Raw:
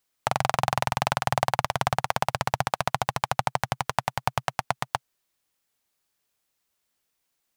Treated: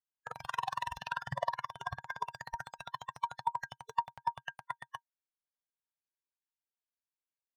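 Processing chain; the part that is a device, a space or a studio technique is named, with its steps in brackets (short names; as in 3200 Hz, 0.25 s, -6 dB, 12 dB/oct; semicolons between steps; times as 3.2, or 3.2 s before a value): spectral noise reduction 19 dB; 0.97–2.27 high shelf 6900 Hz -6 dB; inside a helmet (high shelf 5900 Hz -10 dB; small resonant body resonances 940/1600 Hz, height 12 dB, ringing for 80 ms); gain -5 dB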